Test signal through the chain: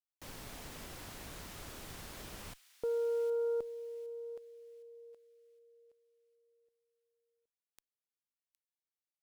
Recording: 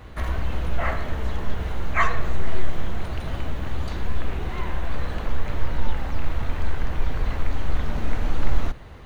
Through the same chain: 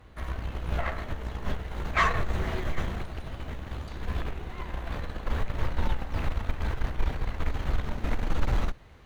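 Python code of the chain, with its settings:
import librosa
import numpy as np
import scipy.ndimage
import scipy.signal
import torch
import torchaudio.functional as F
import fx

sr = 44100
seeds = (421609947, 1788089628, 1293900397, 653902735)

y = fx.echo_wet_highpass(x, sr, ms=763, feedback_pct=40, hz=2100.0, wet_db=-13)
y = fx.cheby_harmonics(y, sr, harmonics=(6, 7), levels_db=(-33, -22), full_scale_db=-4.5)
y = y * librosa.db_to_amplitude(-3.0)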